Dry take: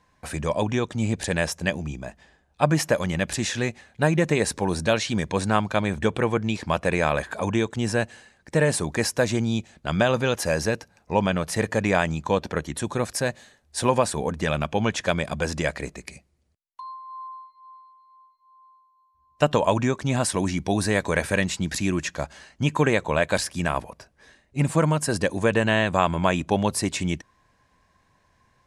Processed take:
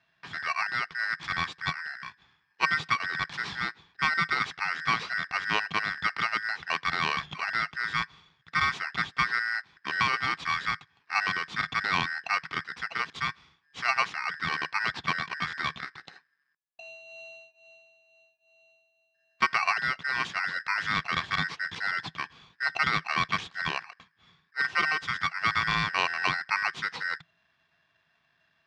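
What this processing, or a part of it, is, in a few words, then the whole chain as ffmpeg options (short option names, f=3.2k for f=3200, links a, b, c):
ring modulator pedal into a guitar cabinet: -filter_complex "[0:a]asettb=1/sr,asplit=3[a][b][c];[a]atrim=end=8.994[d];[b]atrim=start=8.99:end=9.4,asetpts=PTS-STARTPTS,afade=t=in:d=0.004:c=qsin,afade=t=out:st=0.406:d=0.004:c=qsin,bass=f=250:g=4,treble=f=4k:g=-10[e];[c]atrim=start=9.396[f];[d][e]acrossfade=d=0.004:c1=hsin:c2=qsin[g];[g][f]acrossfade=d=0.004:c1=qsin:c2=hsin,aeval=exprs='val(0)*sgn(sin(2*PI*1700*n/s))':c=same,highpass=81,equalizer=f=160:t=q:w=4:g=8,equalizer=f=580:t=q:w=4:g=-9,equalizer=f=1.1k:t=q:w=4:g=4,lowpass=f=4.4k:w=0.5412,lowpass=f=4.4k:w=1.3066,volume=-6dB"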